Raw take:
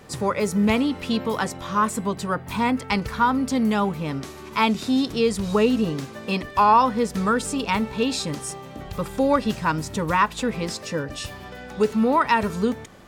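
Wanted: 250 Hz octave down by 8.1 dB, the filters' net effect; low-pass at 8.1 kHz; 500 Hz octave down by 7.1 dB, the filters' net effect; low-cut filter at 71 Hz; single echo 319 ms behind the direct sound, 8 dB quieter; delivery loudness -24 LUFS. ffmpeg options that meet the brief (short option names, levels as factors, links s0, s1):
-af "highpass=71,lowpass=8100,equalizer=f=250:t=o:g=-8.5,equalizer=f=500:t=o:g=-6,aecho=1:1:319:0.398,volume=1.26"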